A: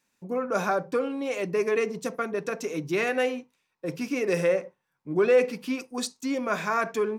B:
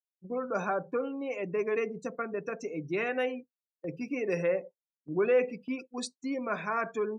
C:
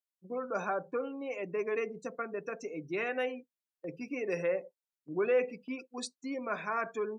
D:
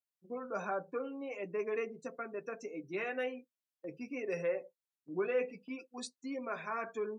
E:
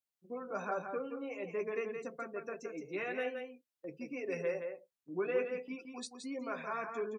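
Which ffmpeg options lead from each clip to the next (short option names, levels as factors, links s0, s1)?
-af "afftdn=nr=30:nf=-38,agate=range=0.398:threshold=0.01:ratio=16:detection=peak,volume=0.562"
-af "lowshelf=f=150:g=-10.5,volume=0.794"
-af "flanger=delay=7.2:depth=4.3:regen=-36:speed=0.46:shape=triangular"
-af "aecho=1:1:170:0.473,volume=0.891"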